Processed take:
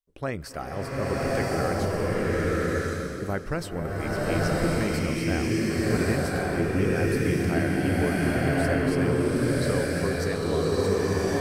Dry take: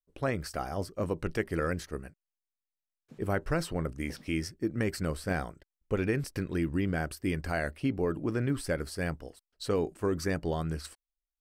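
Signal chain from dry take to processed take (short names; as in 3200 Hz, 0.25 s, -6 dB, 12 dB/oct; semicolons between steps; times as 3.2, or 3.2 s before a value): bloom reverb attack 1.13 s, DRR -7 dB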